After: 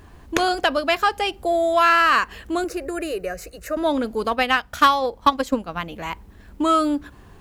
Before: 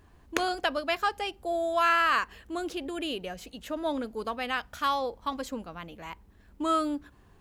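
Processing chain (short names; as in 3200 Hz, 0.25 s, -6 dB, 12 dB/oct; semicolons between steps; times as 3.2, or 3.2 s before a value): 2.64–3.77 fixed phaser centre 890 Hz, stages 6; 4.31–5.96 transient shaper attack +10 dB, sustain -5 dB; in parallel at -2.5 dB: compressor, threshold -34 dBFS, peak gain reduction 16.5 dB; on the sum: soft clip -11.5 dBFS, distortion -21 dB; gain +7 dB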